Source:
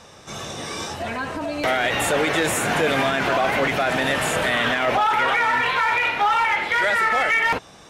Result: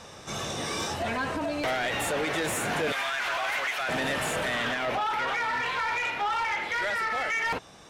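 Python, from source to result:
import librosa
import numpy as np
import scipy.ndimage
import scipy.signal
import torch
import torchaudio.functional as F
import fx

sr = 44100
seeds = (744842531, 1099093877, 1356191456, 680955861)

y = fx.highpass(x, sr, hz=1100.0, slope=12, at=(2.92, 3.89))
y = fx.rider(y, sr, range_db=5, speed_s=0.5)
y = 10.0 ** (-18.0 / 20.0) * np.tanh(y / 10.0 ** (-18.0 / 20.0))
y = y * librosa.db_to_amplitude(-5.0)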